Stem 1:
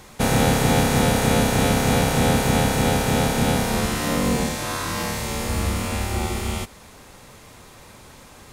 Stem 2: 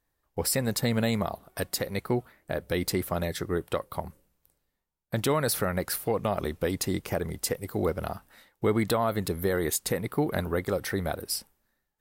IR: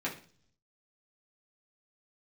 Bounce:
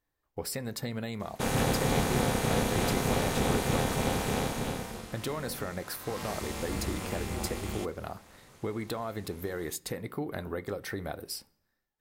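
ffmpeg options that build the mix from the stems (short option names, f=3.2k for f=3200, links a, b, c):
-filter_complex "[0:a]tremolo=f=270:d=0.919,adelay=1200,volume=5dB,afade=t=out:st=4.31:d=0.76:silence=0.251189,afade=t=in:st=5.97:d=0.36:silence=0.298538[a];[1:a]equalizer=f=11k:t=o:w=0.98:g=-4.5,acompressor=threshold=-27dB:ratio=6,volume=-5dB,asplit=2[b][c];[c]volume=-16dB[d];[2:a]atrim=start_sample=2205[e];[d][e]afir=irnorm=-1:irlink=0[f];[a][b][f]amix=inputs=3:normalize=0"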